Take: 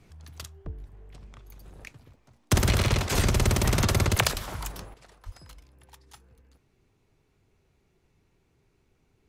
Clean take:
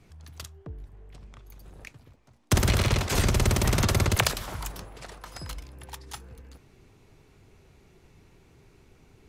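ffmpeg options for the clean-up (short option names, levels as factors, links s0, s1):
-filter_complex "[0:a]asplit=3[s0][s1][s2];[s0]afade=t=out:st=0.64:d=0.02[s3];[s1]highpass=f=140:w=0.5412,highpass=f=140:w=1.3066,afade=t=in:st=0.64:d=0.02,afade=t=out:st=0.76:d=0.02[s4];[s2]afade=t=in:st=0.76:d=0.02[s5];[s3][s4][s5]amix=inputs=3:normalize=0,asplit=3[s6][s7][s8];[s6]afade=t=out:st=4.33:d=0.02[s9];[s7]highpass=f=140:w=0.5412,highpass=f=140:w=1.3066,afade=t=in:st=4.33:d=0.02,afade=t=out:st=4.45:d=0.02[s10];[s8]afade=t=in:st=4.45:d=0.02[s11];[s9][s10][s11]amix=inputs=3:normalize=0,asplit=3[s12][s13][s14];[s12]afade=t=out:st=5.25:d=0.02[s15];[s13]highpass=f=140:w=0.5412,highpass=f=140:w=1.3066,afade=t=in:st=5.25:d=0.02,afade=t=out:st=5.37:d=0.02[s16];[s14]afade=t=in:st=5.37:d=0.02[s17];[s15][s16][s17]amix=inputs=3:normalize=0,asetnsamples=n=441:p=0,asendcmd='4.94 volume volume 11.5dB',volume=1"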